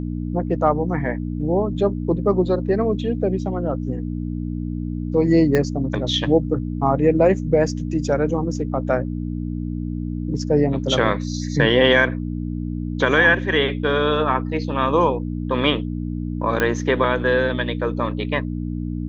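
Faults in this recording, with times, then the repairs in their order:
mains hum 60 Hz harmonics 5 −26 dBFS
0:05.55: click −7 dBFS
0:16.60: click −7 dBFS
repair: click removal
hum removal 60 Hz, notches 5

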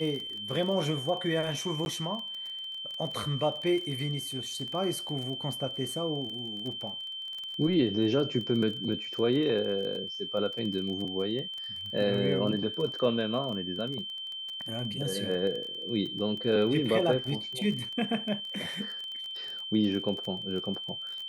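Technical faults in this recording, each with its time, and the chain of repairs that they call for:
surface crackle 22 per second −35 dBFS
whistle 3,100 Hz −36 dBFS
0:01.85–0:01.86: drop-out 11 ms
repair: click removal
notch filter 3,100 Hz, Q 30
repair the gap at 0:01.85, 11 ms

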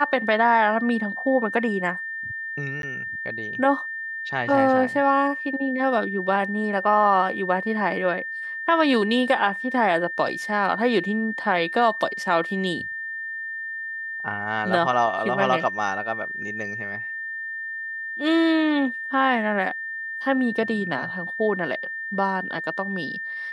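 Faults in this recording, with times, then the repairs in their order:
whistle 1,800 Hz −29 dBFS
0:02.82–0:02.83: drop-out 12 ms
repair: notch filter 1,800 Hz, Q 30
repair the gap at 0:02.82, 12 ms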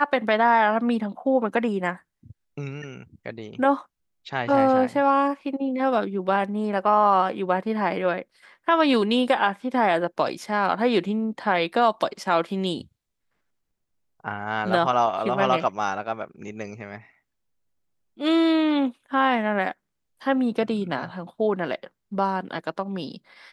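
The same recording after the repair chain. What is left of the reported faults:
none of them is left

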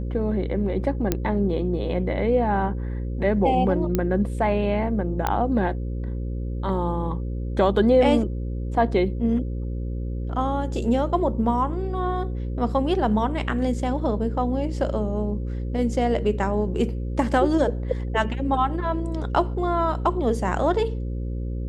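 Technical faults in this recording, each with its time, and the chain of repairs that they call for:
mains buzz 60 Hz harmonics 9 −28 dBFS
0:01.12: click −7 dBFS
0:03.95: click −9 dBFS
0:05.27: click −9 dBFS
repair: click removal
hum removal 60 Hz, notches 9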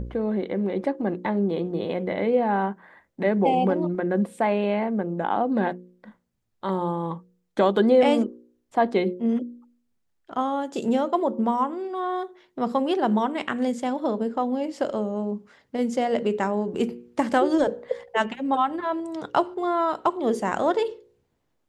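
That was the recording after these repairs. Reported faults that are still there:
none of them is left

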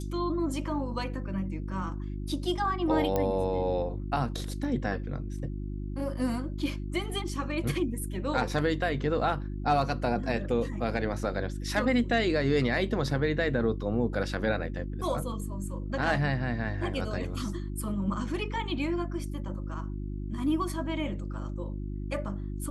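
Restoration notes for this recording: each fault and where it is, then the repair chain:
mains hum 50 Hz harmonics 7 −35 dBFS
0:03.16: click −15 dBFS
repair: click removal
hum removal 50 Hz, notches 7

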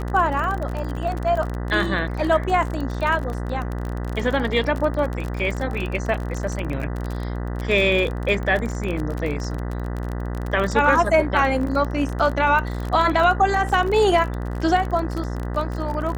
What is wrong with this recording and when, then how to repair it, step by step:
mains buzz 60 Hz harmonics 33 −27 dBFS
surface crackle 32 per second −25 dBFS
0:00.97: drop-out 4.8 ms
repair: click removal
hum removal 60 Hz, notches 33
repair the gap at 0:00.97, 4.8 ms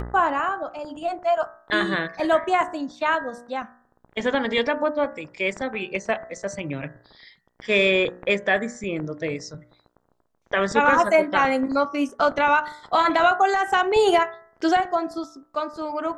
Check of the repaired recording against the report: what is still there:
none of them is left

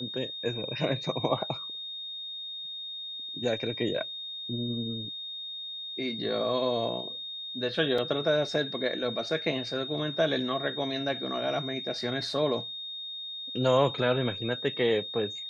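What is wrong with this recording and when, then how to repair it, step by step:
whistle 3,700 Hz −36 dBFS
0:07.98: drop-out 3.6 ms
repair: notch filter 3,700 Hz, Q 30
repair the gap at 0:07.98, 3.6 ms

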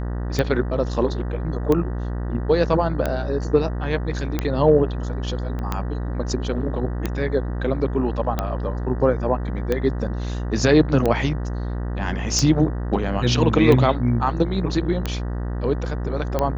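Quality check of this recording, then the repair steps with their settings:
mains buzz 60 Hz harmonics 32 −26 dBFS
scratch tick 45 rpm −9 dBFS
0:05.59: click −19 dBFS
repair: click removal
hum removal 60 Hz, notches 32

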